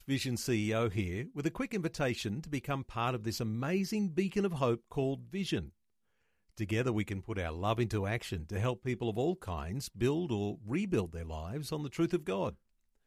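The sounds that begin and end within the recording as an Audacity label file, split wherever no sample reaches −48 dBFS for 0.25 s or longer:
6.570000	12.550000	sound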